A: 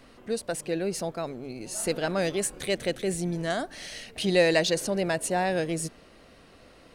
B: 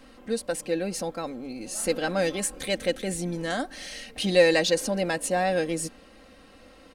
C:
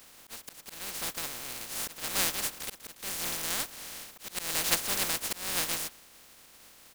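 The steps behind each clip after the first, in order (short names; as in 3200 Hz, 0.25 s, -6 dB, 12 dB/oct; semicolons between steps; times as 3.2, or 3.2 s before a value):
comb 3.8 ms, depth 60%
spectral contrast lowered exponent 0.11; auto swell 0.307 s; gain -3 dB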